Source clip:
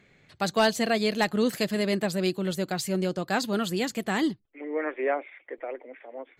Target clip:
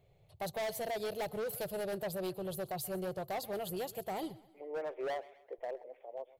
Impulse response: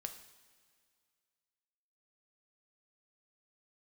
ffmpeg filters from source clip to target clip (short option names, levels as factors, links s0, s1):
-filter_complex "[0:a]firequalizer=gain_entry='entry(120,0);entry(240,-26);entry(380,-9);entry(670,-2);entry(1600,-28);entry(2900,-14);entry(7200,-17);entry(11000,1)':delay=0.05:min_phase=1,asoftclip=type=hard:threshold=0.0178,asplit=2[s0][s1];[s1]aecho=0:1:130|260|390:0.106|0.0434|0.0178[s2];[s0][s2]amix=inputs=2:normalize=0,volume=1.12"